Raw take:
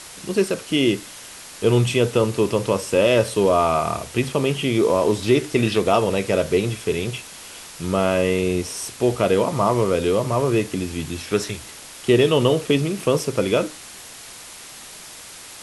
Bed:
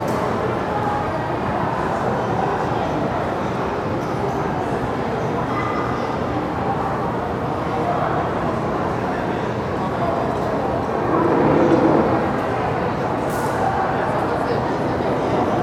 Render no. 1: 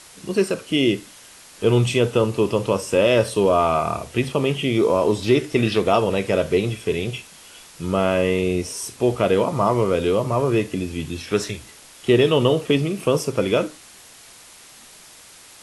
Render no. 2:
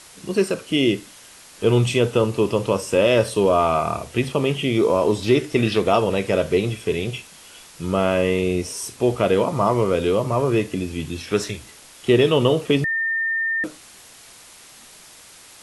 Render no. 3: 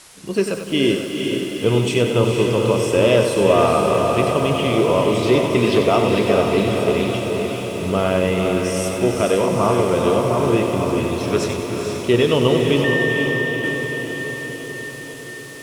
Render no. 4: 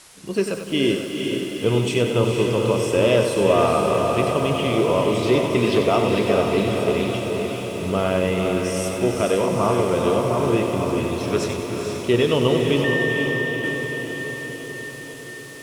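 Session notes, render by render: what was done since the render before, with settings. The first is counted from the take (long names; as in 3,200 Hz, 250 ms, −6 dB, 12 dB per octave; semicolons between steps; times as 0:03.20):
noise reduction from a noise print 6 dB
0:12.84–0:13.64: beep over 1,810 Hz −19.5 dBFS
on a send: feedback delay with all-pass diffusion 464 ms, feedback 65%, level −4 dB; on the sum: feedback echo at a low word length 96 ms, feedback 55%, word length 7 bits, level −8 dB
level −2.5 dB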